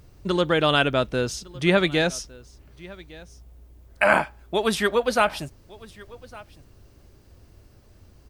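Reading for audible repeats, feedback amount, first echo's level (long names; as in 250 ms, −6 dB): 1, repeats not evenly spaced, −22.0 dB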